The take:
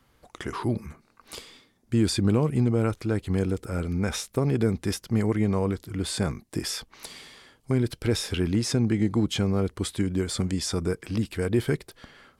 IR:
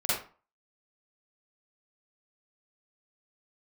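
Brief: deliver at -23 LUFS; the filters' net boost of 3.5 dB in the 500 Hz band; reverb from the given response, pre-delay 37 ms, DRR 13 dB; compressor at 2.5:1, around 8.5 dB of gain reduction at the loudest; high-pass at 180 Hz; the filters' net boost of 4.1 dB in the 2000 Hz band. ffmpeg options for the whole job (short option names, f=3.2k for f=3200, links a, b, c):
-filter_complex "[0:a]highpass=180,equalizer=f=500:t=o:g=4.5,equalizer=f=2k:t=o:g=5,acompressor=threshold=-31dB:ratio=2.5,asplit=2[a][b];[1:a]atrim=start_sample=2205,adelay=37[c];[b][c]afir=irnorm=-1:irlink=0,volume=-23dB[d];[a][d]amix=inputs=2:normalize=0,volume=10.5dB"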